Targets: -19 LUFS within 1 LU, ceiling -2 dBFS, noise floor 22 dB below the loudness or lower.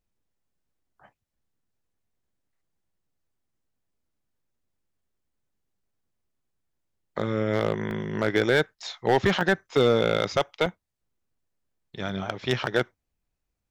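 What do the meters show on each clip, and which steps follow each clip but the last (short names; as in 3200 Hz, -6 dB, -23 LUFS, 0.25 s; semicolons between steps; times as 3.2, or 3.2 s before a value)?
clipped 0.3%; flat tops at -13.0 dBFS; dropouts 6; longest dropout 1.2 ms; loudness -25.5 LUFS; peak -13.0 dBFS; loudness target -19.0 LUFS
-> clip repair -13 dBFS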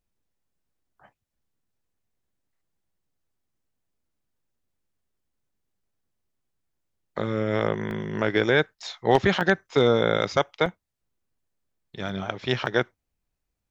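clipped 0.0%; dropouts 6; longest dropout 1.2 ms
-> interpolate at 7.91/8.59/9.41/10.66/12.09/12.66, 1.2 ms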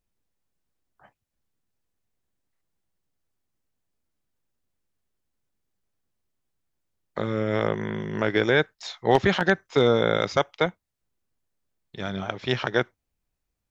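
dropouts 0; loudness -24.5 LUFS; peak -4.0 dBFS; loudness target -19.0 LUFS
-> gain +5.5 dB; limiter -2 dBFS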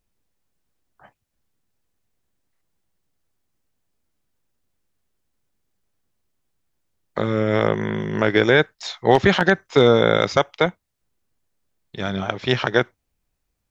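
loudness -19.5 LUFS; peak -2.0 dBFS; noise floor -76 dBFS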